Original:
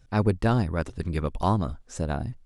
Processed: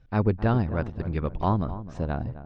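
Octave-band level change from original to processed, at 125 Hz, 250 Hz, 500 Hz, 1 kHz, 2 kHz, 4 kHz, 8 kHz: 0.0 dB, 0.0 dB, -0.5 dB, -1.0 dB, -2.0 dB, -6.5 dB, under -15 dB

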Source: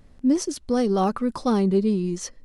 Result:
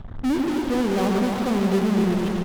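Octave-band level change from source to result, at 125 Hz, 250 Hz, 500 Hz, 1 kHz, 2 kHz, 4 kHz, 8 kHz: +2.5, +1.5, 0.0, 0.0, +9.5, +3.5, -5.5 dB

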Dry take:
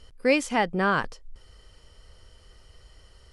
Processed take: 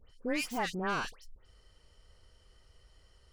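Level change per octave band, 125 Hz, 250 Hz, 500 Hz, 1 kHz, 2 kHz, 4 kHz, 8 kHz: -10.0, -9.5, -12.5, -9.5, -9.5, -6.0, -6.0 dB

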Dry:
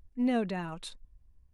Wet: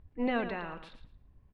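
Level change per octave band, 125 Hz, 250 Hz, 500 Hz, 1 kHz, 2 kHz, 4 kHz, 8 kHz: -7.0 dB, -4.5 dB, 0.0 dB, +1.0 dB, +4.0 dB, -3.5 dB, under -20 dB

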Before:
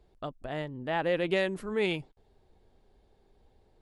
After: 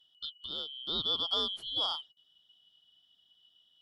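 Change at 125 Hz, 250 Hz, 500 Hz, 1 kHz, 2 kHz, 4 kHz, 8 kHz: -16.5 dB, -14.5 dB, -15.5 dB, -6.5 dB, under -20 dB, +12.0 dB, n/a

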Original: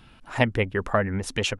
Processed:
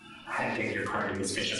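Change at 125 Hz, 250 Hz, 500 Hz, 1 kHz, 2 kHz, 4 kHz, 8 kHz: -13.0, -6.0, -8.0, -3.5, -3.5, -2.5, 0.0 dB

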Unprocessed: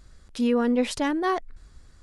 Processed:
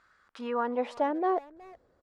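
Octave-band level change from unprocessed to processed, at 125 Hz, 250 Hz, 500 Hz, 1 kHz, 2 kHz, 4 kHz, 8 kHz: n/a, -10.5 dB, -3.5 dB, -0.5 dB, -8.5 dB, -14.0 dB, under -20 dB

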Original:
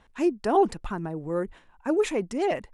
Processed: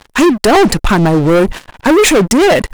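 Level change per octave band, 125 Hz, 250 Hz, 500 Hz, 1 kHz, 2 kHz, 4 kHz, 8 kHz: +22.5, +17.5, +15.0, +14.0, +23.0, +25.0, +25.5 dB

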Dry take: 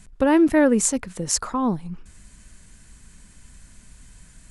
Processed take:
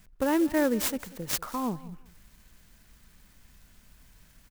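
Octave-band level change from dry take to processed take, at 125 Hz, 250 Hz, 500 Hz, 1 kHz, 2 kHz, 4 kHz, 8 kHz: -9.0, -8.5, -8.0, -7.0, -6.5, -4.5, -12.0 dB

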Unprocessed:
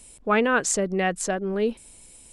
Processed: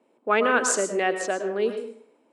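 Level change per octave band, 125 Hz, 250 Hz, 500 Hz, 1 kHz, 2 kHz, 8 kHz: under -10 dB, -5.0 dB, +1.0 dB, +1.0 dB, +0.5 dB, 0.0 dB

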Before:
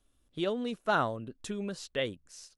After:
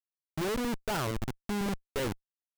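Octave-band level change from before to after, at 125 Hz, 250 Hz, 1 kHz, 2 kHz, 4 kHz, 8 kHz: +5.0, +2.0, -3.5, -2.5, -0.5, +4.5 dB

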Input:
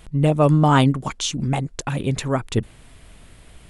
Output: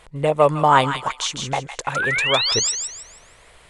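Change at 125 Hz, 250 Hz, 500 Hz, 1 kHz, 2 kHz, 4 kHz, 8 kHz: -9.5, -9.5, +2.5, +5.0, +9.0, +8.5, +8.5 dB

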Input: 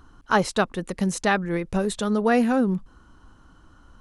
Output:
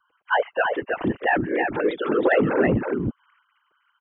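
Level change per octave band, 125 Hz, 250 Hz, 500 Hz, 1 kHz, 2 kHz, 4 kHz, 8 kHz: -0.5 dB, -2.0 dB, +3.5 dB, +0.5 dB, +4.0 dB, -4.0 dB, under -40 dB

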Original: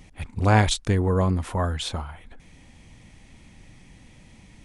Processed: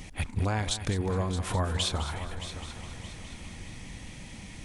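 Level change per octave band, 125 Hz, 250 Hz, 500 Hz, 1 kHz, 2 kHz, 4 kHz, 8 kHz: -6.5, -7.5, -7.5, -8.0, -6.5, -1.5, -1.5 dB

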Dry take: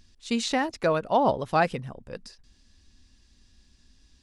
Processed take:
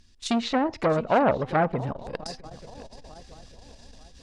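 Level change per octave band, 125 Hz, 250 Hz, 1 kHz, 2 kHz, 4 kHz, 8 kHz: +4.0, +3.0, 0.0, -0.5, -0.5, -3.0 dB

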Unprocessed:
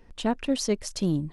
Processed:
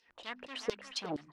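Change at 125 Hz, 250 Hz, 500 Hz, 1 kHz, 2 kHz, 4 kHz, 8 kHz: -21.5, -18.0, -10.5, -9.0, -4.0, -6.0, -15.0 dB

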